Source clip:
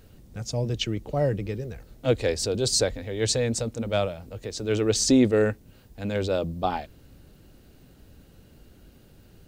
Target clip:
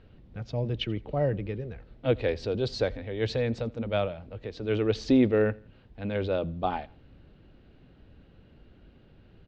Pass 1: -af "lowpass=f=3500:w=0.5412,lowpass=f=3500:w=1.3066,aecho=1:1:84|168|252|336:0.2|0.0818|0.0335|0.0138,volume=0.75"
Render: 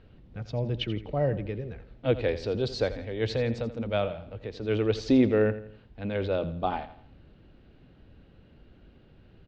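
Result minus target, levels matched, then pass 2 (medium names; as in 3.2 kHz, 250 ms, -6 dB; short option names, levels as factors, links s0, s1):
echo-to-direct +11 dB
-af "lowpass=f=3500:w=0.5412,lowpass=f=3500:w=1.3066,aecho=1:1:84|168:0.0562|0.0231,volume=0.75"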